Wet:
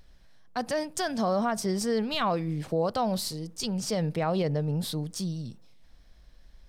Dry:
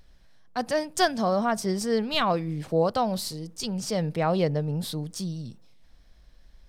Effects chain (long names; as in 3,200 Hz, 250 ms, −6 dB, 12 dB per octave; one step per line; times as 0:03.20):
brickwall limiter −18.5 dBFS, peak gain reduction 10.5 dB